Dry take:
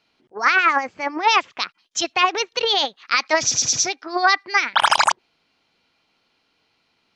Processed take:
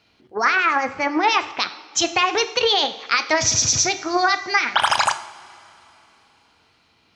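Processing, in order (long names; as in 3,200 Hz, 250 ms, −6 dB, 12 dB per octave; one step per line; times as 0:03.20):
parametric band 90 Hz +10.5 dB 1.3 octaves
in parallel at −2 dB: brickwall limiter −17 dBFS, peak gain reduction 12 dB
on the sum: downward compressor, threshold −14 dBFS, peak gain reduction 5.5 dB
coupled-rooms reverb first 0.56 s, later 3.5 s, from −18 dB, DRR 9 dB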